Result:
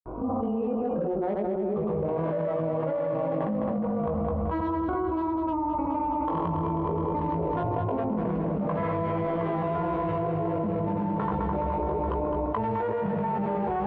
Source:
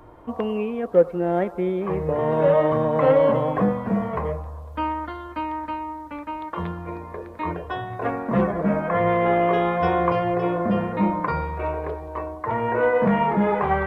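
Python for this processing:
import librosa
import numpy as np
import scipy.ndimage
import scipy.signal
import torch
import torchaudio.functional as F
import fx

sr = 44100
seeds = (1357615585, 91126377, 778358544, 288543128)

y = fx.wiener(x, sr, points=25)
y = fx.doppler_pass(y, sr, speed_mps=15, closest_m=1.5, pass_at_s=5.62)
y = scipy.signal.sosfilt(scipy.signal.butter(2, 1900.0, 'lowpass', fs=sr, output='sos'), y)
y = fx.hum_notches(y, sr, base_hz=60, count=4)
y = fx.granulator(y, sr, seeds[0], grain_ms=100.0, per_s=20.0, spray_ms=100.0, spread_st=0)
y = fx.doubler(y, sr, ms=19.0, db=-4)
y = fx.echo_feedback(y, sr, ms=210, feedback_pct=56, wet_db=-8.5)
y = fx.env_flatten(y, sr, amount_pct=100)
y = y * librosa.db_to_amplitude(7.0)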